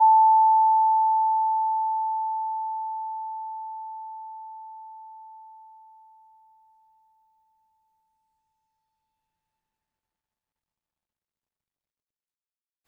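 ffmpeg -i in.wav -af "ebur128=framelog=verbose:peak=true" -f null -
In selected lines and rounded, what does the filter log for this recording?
Integrated loudness:
  I:         -22.3 LUFS
  Threshold: -35.6 LUFS
Loudness range:
  LRA:        24.9 LU
  Threshold: -50.1 LUFS
  LRA low:   -46.9 LUFS
  LRA high:  -22.0 LUFS
True peak:
  Peak:      -11.6 dBFS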